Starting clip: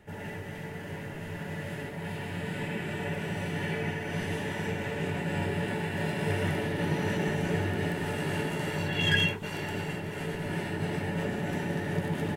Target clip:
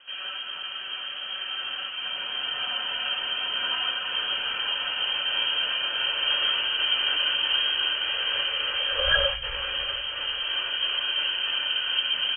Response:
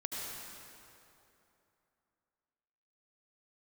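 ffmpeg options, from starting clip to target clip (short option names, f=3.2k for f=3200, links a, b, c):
-filter_complex "[0:a]lowpass=f=2.8k:t=q:w=0.5098,lowpass=f=2.8k:t=q:w=0.6013,lowpass=f=2.8k:t=q:w=0.9,lowpass=f=2.8k:t=q:w=2.563,afreqshift=-3300,asplit=2[a][b];[b]asubboost=boost=9:cutoff=190[c];[1:a]atrim=start_sample=2205[d];[c][d]afir=irnorm=-1:irlink=0,volume=-18.5dB[e];[a][e]amix=inputs=2:normalize=0,volume=3.5dB"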